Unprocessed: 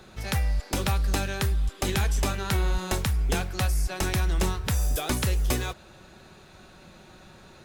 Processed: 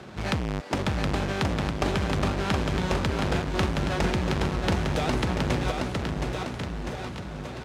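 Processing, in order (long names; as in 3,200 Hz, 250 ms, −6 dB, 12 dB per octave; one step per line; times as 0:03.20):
each half-wave held at its own peak
high-pass filter 89 Hz 12 dB per octave
high-shelf EQ 7,000 Hz −7 dB
downward compressor, threshold −26 dBFS, peak gain reduction 9.5 dB
high-frequency loss of the air 56 metres
on a send: bouncing-ball delay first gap 720 ms, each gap 0.9×, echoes 5
on the sum: level +3 dB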